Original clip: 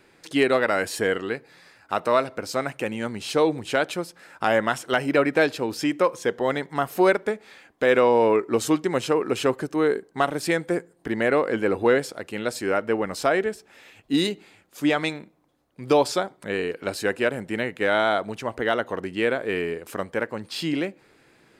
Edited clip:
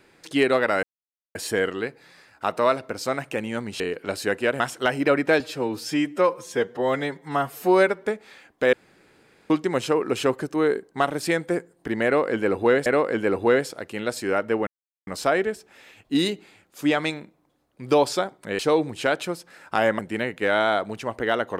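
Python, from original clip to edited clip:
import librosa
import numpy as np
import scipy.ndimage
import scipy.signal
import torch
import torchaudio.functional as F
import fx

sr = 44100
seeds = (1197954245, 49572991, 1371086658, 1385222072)

y = fx.edit(x, sr, fx.insert_silence(at_s=0.83, length_s=0.52),
    fx.swap(start_s=3.28, length_s=1.4, other_s=16.58, other_length_s=0.8),
    fx.stretch_span(start_s=5.48, length_s=1.76, factor=1.5),
    fx.room_tone_fill(start_s=7.93, length_s=0.77),
    fx.repeat(start_s=11.25, length_s=0.81, count=2),
    fx.insert_silence(at_s=13.06, length_s=0.4), tone=tone)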